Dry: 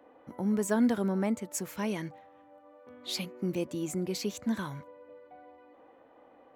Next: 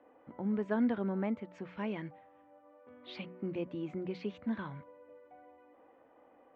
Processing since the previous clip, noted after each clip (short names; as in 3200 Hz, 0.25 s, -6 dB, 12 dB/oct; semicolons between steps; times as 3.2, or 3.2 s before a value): inverse Chebyshev low-pass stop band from 11000 Hz, stop band 70 dB; notches 60/120/180 Hz; gain -4.5 dB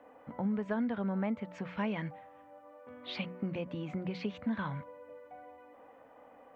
compressor 10:1, threshold -35 dBFS, peak gain reduction 10 dB; bell 350 Hz -11 dB 0.4 oct; gain +7 dB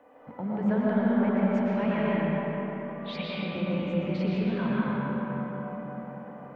reverb RT60 4.7 s, pre-delay 75 ms, DRR -7.5 dB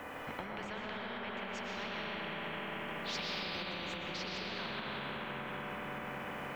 compressor, threshold -36 dBFS, peak gain reduction 15.5 dB; spectral compressor 4:1; gain +1 dB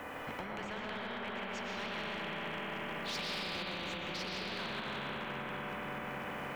hard clip -34 dBFS, distortion -21 dB; gain +1 dB